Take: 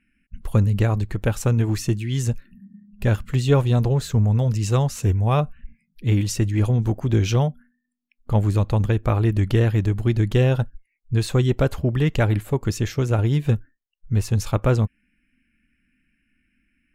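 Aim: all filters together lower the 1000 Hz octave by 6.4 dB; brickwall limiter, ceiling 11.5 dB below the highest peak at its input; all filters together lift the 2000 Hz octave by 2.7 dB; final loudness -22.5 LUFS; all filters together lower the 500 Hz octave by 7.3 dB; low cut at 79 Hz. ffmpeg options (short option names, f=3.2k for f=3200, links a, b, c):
-af "highpass=79,equalizer=f=500:t=o:g=-8,equalizer=f=1k:t=o:g=-8,equalizer=f=2k:t=o:g=6.5,volume=5.5dB,alimiter=limit=-14dB:level=0:latency=1"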